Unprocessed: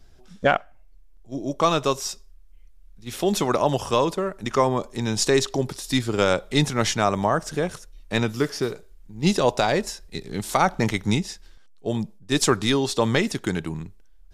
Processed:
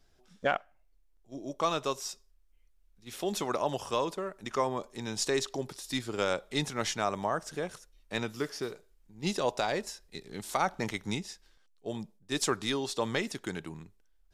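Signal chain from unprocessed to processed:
low-shelf EQ 200 Hz −8.5 dB
level −8.5 dB

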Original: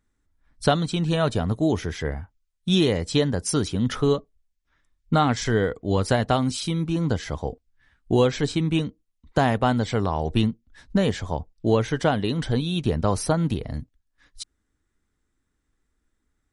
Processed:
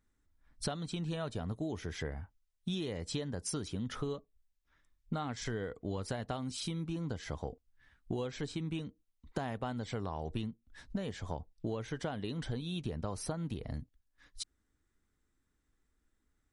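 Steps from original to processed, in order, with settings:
downward compressor 6 to 1, threshold −31 dBFS, peak gain reduction 16 dB
level −4 dB

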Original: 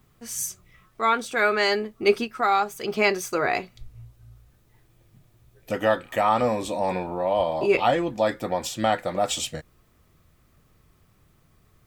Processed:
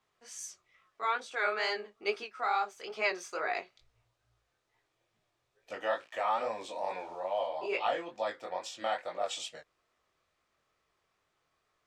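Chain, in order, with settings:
0:05.82–0:07.47: centre clipping without the shift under −44.5 dBFS
three-way crossover with the lows and the highs turned down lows −21 dB, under 420 Hz, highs −22 dB, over 7,700 Hz
chorus effect 2.3 Hz, delay 17.5 ms, depth 6.8 ms
level −6 dB

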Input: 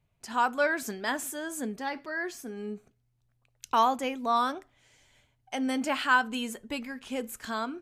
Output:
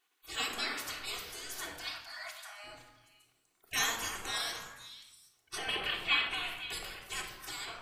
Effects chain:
0:03.67–0:04.38: octave-band graphic EQ 2,000/4,000/8,000 Hz +8/−9/+11 dB
gate on every frequency bin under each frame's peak −25 dB weak
0:01.76–0:02.64: linear-phase brick-wall high-pass 590 Hz
0:05.58–0:06.58: high shelf with overshoot 4,300 Hz −13 dB, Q 3
echo through a band-pass that steps 257 ms, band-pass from 1,300 Hz, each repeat 1.4 octaves, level −9 dB
convolution reverb RT60 0.90 s, pre-delay 3 ms, DRR 0 dB
level +8 dB

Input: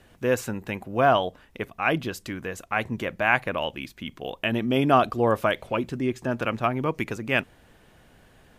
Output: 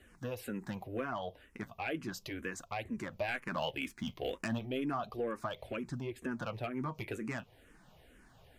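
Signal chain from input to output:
downward compressor 8 to 1, threshold −26 dBFS, peak gain reduction 12.5 dB
flanger 0.35 Hz, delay 0.9 ms, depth 9.5 ms, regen −54%
0:03.28–0:04.59: leveller curve on the samples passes 1
soft clipping −25 dBFS, distortion −18 dB
frequency shifter mixed with the dry sound −2.1 Hz
level +1 dB

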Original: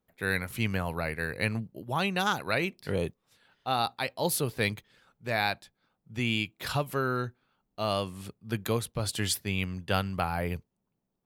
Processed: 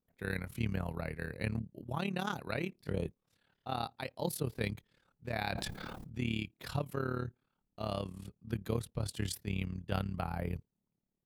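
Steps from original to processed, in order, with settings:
amplitude modulation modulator 36 Hz, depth 70%
low-shelf EQ 470 Hz +8.5 dB
0:05.31–0:06.23: level that may fall only so fast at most 21 dB per second
level −8 dB

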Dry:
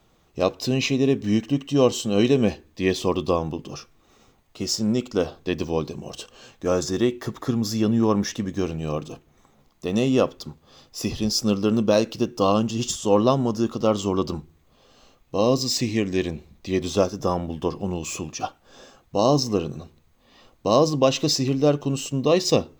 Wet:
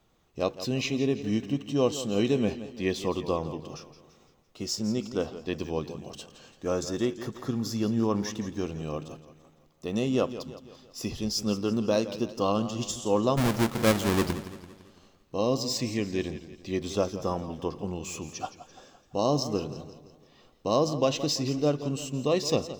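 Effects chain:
0:13.37–0:14.33: each half-wave held at its own peak
feedback echo with a swinging delay time 169 ms, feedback 49%, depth 91 cents, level −13.5 dB
level −6.5 dB

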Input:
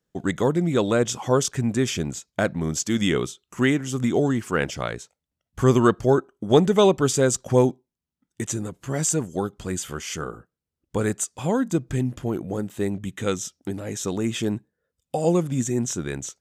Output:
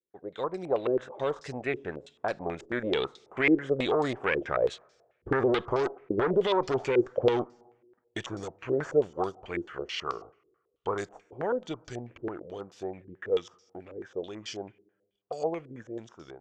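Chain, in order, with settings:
source passing by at 0:05.87, 21 m/s, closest 21 metres
automatic gain control gain up to 7.5 dB
tube saturation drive 16 dB, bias 0.45
low shelf with overshoot 320 Hz −8.5 dB, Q 1.5
brickwall limiter −19.5 dBFS, peak gain reduction 9.5 dB
on a send at −23.5 dB: convolution reverb RT60 1.3 s, pre-delay 4 ms
on the sum: low-pass on a step sequencer 9.2 Hz 360–5,000 Hz

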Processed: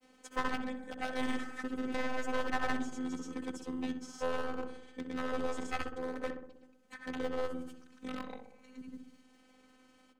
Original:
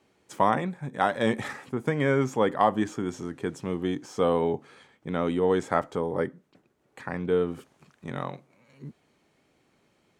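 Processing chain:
wavefolder on the positive side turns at −22.5 dBFS
parametric band 7,400 Hz +2.5 dB 1.6 octaves
mains-hum notches 50/100/150 Hz
granular cloud, pitch spread up and down by 0 semitones
phases set to zero 256 Hz
feedback echo with a low-pass in the loop 63 ms, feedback 58%, low-pass 1,300 Hz, level −6 dB
multiband upward and downward compressor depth 40%
level −5 dB

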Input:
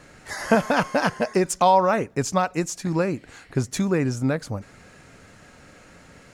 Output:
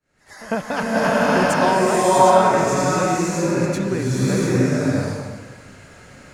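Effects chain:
fade in at the beginning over 0.63 s
echo ahead of the sound 100 ms −18.5 dB
slow-attack reverb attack 660 ms, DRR −8.5 dB
level −4 dB

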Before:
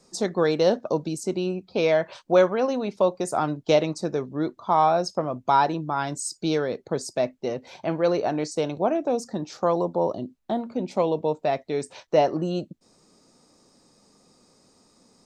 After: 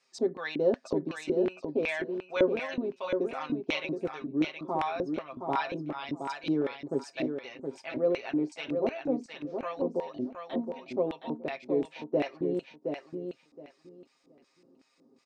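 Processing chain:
comb filter 7.5 ms, depth 76%
auto-filter band-pass square 2.7 Hz 320–2,400 Hz
on a send: repeating echo 719 ms, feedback 19%, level −6 dB

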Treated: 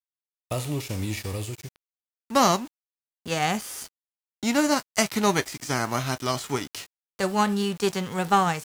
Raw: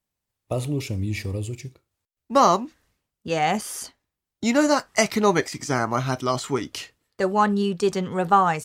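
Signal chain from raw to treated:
spectral envelope flattened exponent 0.6
centre clipping without the shift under −39 dBFS
level −3 dB

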